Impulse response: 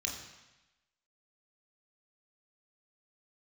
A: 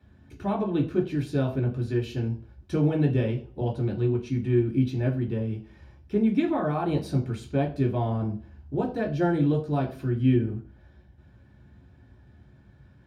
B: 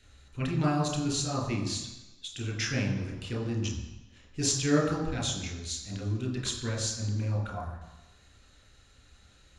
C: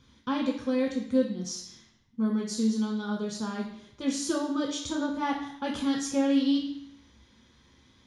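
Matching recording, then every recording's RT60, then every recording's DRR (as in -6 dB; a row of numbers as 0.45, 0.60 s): B; 0.40, 1.0, 0.70 s; -2.5, 0.5, -1.0 dB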